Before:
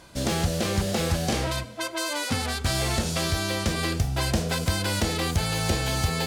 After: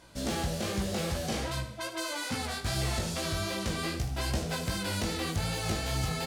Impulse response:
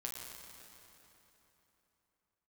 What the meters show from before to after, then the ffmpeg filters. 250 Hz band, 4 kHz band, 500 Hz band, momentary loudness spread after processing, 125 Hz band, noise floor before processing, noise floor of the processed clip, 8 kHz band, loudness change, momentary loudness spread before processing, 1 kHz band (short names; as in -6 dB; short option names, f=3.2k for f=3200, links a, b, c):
-6.0 dB, -6.5 dB, -6.0 dB, 3 LU, -7.0 dB, -39 dBFS, -42 dBFS, -6.5 dB, -6.5 dB, 3 LU, -6.0 dB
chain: -filter_complex "[0:a]flanger=delay=15.5:depth=4.3:speed=2.5,asplit=2[a][b];[b]asoftclip=type=tanh:threshold=-27dB,volume=-6.5dB[c];[a][c]amix=inputs=2:normalize=0,aecho=1:1:76|152|228|304:0.266|0.101|0.0384|0.0146,volume=-6dB"